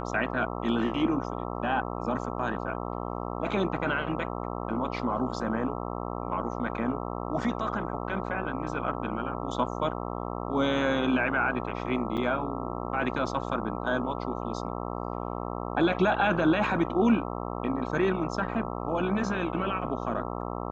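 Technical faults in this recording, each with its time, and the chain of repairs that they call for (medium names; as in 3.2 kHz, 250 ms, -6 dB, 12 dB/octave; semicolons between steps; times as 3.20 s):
buzz 60 Hz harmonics 22 -34 dBFS
12.17–12.18 s: dropout 6.9 ms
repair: de-hum 60 Hz, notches 22; interpolate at 12.17 s, 6.9 ms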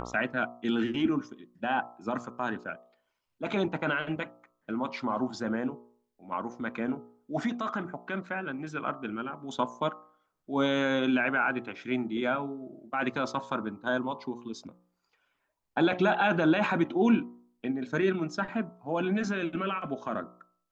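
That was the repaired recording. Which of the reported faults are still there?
nothing left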